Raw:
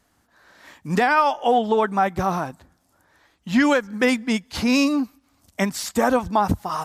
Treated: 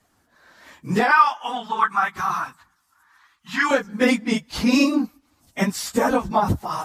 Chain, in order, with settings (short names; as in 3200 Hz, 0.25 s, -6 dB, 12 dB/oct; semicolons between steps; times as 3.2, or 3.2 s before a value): phase scrambler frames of 50 ms; 1.11–3.71 resonant low shelf 790 Hz -12.5 dB, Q 3